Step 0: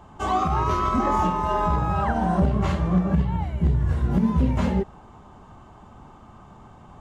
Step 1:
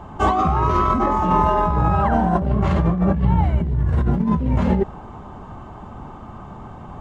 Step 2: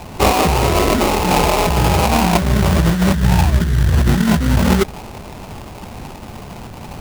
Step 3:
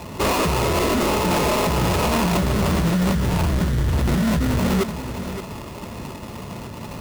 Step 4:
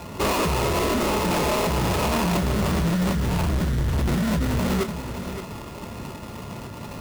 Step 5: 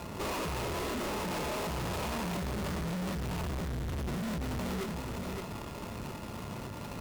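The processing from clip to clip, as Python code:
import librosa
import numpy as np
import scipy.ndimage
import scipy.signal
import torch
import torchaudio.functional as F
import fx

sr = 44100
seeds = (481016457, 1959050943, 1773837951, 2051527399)

y1 = fx.over_compress(x, sr, threshold_db=-25.0, ratio=-1.0)
y1 = fx.high_shelf(y1, sr, hz=3200.0, db=-11.0)
y1 = y1 * librosa.db_to_amplitude(7.5)
y2 = fx.rider(y1, sr, range_db=10, speed_s=0.5)
y2 = fx.sample_hold(y2, sr, seeds[0], rate_hz=1700.0, jitter_pct=20)
y2 = y2 * librosa.db_to_amplitude(4.0)
y3 = fx.notch_comb(y2, sr, f0_hz=770.0)
y3 = np.clip(y3, -10.0 ** (-17.5 / 20.0), 10.0 ** (-17.5 / 20.0))
y3 = y3 + 10.0 ** (-10.5 / 20.0) * np.pad(y3, (int(570 * sr / 1000.0), 0))[:len(y3)]
y4 = y3 + 10.0 ** (-47.0 / 20.0) * np.sin(2.0 * np.pi * 1400.0 * np.arange(len(y3)) / sr)
y4 = fx.doubler(y4, sr, ms=29.0, db=-12)
y4 = np.clip(10.0 ** (16.5 / 20.0) * y4, -1.0, 1.0) / 10.0 ** (16.5 / 20.0)
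y4 = y4 * librosa.db_to_amplitude(-2.5)
y5 = fx.tube_stage(y4, sr, drive_db=32.0, bias=0.6)
y5 = y5 * librosa.db_to_amplitude(-1.5)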